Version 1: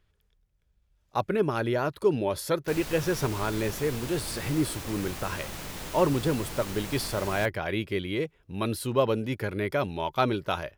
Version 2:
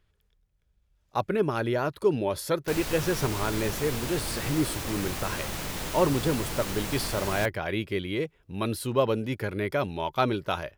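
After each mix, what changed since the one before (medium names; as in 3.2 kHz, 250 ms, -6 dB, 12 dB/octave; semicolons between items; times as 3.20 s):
background +4.5 dB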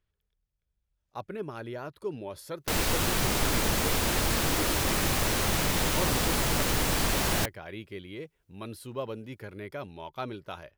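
speech -11.0 dB; background +7.0 dB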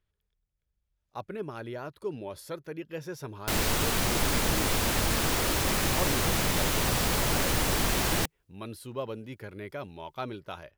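background: entry +0.80 s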